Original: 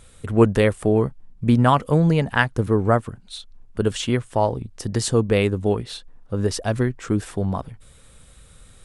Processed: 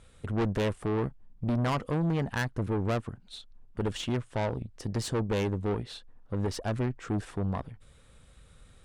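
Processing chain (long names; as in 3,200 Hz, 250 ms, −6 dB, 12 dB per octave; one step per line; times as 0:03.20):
high-shelf EQ 7,000 Hz −12 dB
tube saturation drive 21 dB, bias 0.55
level −3.5 dB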